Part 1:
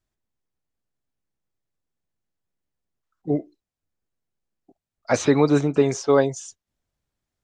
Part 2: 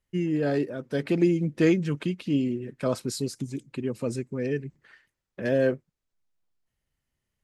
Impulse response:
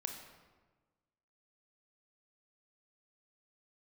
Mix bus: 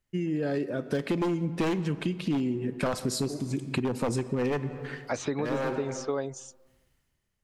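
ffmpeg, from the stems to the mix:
-filter_complex "[0:a]volume=-7.5dB,asplit=2[a][b];[1:a]dynaudnorm=f=120:g=11:m=16.5dB,aeval=exprs='0.355*(abs(mod(val(0)/0.355+3,4)-2)-1)':c=same,volume=-3.5dB,asplit=2[c][d];[d]volume=-5.5dB[e];[b]apad=whole_len=327727[f];[c][f]sidechaincompress=threshold=-44dB:ratio=8:attack=16:release=259[g];[2:a]atrim=start_sample=2205[h];[e][h]afir=irnorm=-1:irlink=0[i];[a][g][i]amix=inputs=3:normalize=0,acompressor=threshold=-26dB:ratio=6"

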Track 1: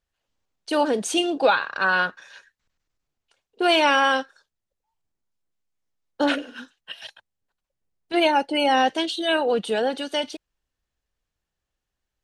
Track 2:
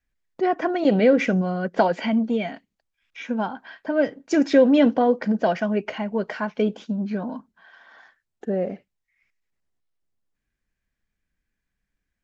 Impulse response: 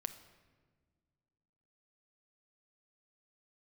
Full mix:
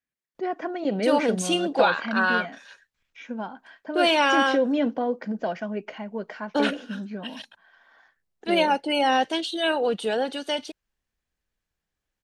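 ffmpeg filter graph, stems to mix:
-filter_complex "[0:a]adelay=350,volume=-2dB[a];[1:a]highpass=140,volume=-7dB[b];[a][b]amix=inputs=2:normalize=0"

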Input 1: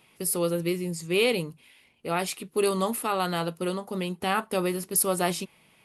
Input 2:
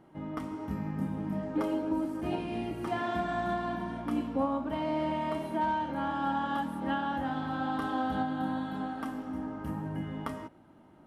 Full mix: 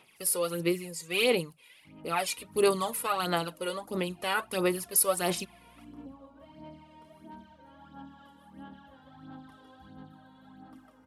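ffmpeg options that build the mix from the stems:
-filter_complex "[0:a]lowshelf=f=210:g=-8.5,volume=-2.5dB,asplit=2[a][b];[1:a]acrossover=split=350|3000[c][d][e];[d]acompressor=threshold=-43dB:ratio=2.5[f];[c][f][e]amix=inputs=3:normalize=0,adelay=1700,volume=-16.5dB,asplit=2[g][h];[h]volume=-5dB[i];[b]apad=whole_len=563044[j];[g][j]sidechaincompress=threshold=-39dB:ratio=8:attack=45:release=363[k];[i]aecho=0:1:153:1[l];[a][k][l]amix=inputs=3:normalize=0,lowshelf=f=400:g=-4,aphaser=in_gain=1:out_gain=1:delay=2.1:decay=0.6:speed=1.5:type=sinusoidal"

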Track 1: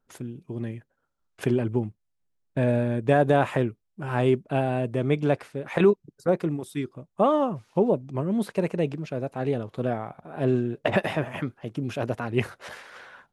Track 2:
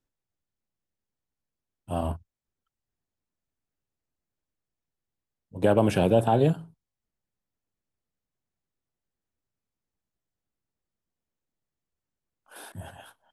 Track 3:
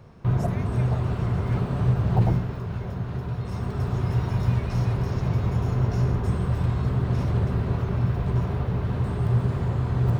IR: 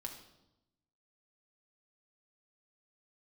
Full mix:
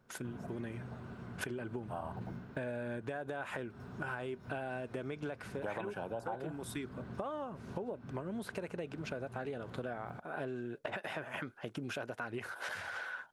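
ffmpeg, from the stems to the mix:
-filter_complex "[0:a]alimiter=limit=-14dB:level=0:latency=1,volume=1dB[a];[1:a]equalizer=f=980:t=o:w=1.7:g=15,volume=-16dB[b];[2:a]equalizer=f=230:w=1.5:g=12,volume=-18dB[c];[a][c]amix=inputs=2:normalize=0,lowshelf=f=270:g=-11.5,acompressor=threshold=-32dB:ratio=2,volume=0dB[d];[b][d]amix=inputs=2:normalize=0,equalizer=f=1.5k:w=7.8:g=9.5,acompressor=threshold=-37dB:ratio=6"

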